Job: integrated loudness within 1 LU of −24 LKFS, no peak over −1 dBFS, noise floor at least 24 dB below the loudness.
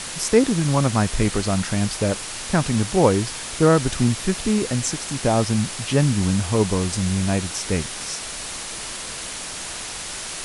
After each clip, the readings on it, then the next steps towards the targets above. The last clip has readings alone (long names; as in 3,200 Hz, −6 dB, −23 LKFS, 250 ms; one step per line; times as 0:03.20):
background noise floor −32 dBFS; target noise floor −46 dBFS; integrated loudness −22.0 LKFS; sample peak −3.5 dBFS; target loudness −24.0 LKFS
→ noise reduction from a noise print 14 dB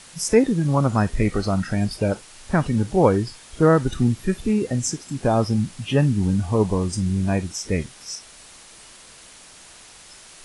background noise floor −46 dBFS; integrated loudness −22.0 LKFS; sample peak −4.0 dBFS; target loudness −24.0 LKFS
→ level −2 dB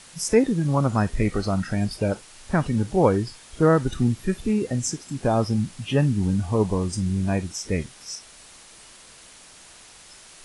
integrated loudness −24.0 LKFS; sample peak −6.0 dBFS; background noise floor −48 dBFS